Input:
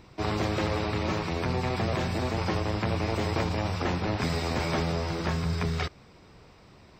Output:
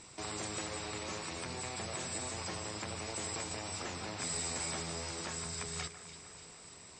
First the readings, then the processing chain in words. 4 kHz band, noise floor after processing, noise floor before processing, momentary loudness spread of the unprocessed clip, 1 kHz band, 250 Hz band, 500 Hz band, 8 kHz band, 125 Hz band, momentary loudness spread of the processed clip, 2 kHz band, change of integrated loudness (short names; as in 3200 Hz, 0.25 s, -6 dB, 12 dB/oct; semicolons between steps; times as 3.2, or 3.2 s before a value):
-5.0 dB, -54 dBFS, -54 dBFS, 2 LU, -11.5 dB, -15.5 dB, -13.5 dB, +9.0 dB, -17.5 dB, 10 LU, -9.0 dB, -9.5 dB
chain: tilt +2 dB/oct; compressor 2:1, threshold -44 dBFS, peak gain reduction 10.5 dB; synth low-pass 7800 Hz, resonance Q 14; echo with dull and thin repeats by turns 0.147 s, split 2100 Hz, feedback 77%, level -10 dB; gain -3 dB